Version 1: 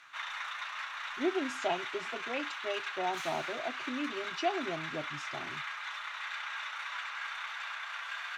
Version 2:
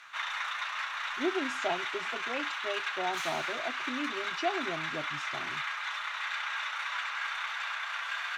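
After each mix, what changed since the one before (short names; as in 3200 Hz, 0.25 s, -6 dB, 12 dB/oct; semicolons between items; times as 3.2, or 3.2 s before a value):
background +4.5 dB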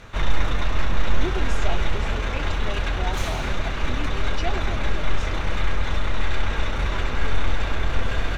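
background: remove inverse Chebyshev high-pass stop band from 320 Hz, stop band 60 dB; master: add high shelf 3400 Hz +7 dB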